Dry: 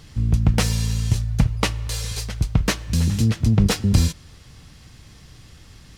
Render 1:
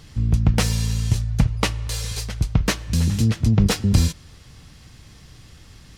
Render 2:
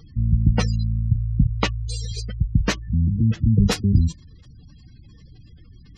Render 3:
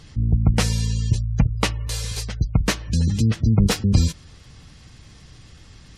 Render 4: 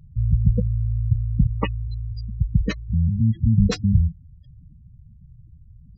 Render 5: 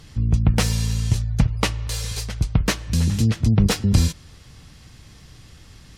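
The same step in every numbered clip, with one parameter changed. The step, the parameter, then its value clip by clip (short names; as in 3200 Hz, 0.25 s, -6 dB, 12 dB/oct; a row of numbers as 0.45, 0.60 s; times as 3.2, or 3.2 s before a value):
spectral gate, under each frame's peak: -60, -20, -35, -10, -50 dB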